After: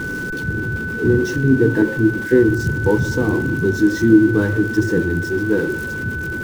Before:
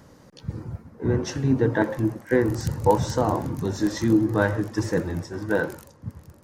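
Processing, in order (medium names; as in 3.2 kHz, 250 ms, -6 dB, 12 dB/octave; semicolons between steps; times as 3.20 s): jump at every zero crossing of -26.5 dBFS; resonant low shelf 500 Hz +7.5 dB, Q 3; whistle 1.5 kHz -20 dBFS; trim -4.5 dB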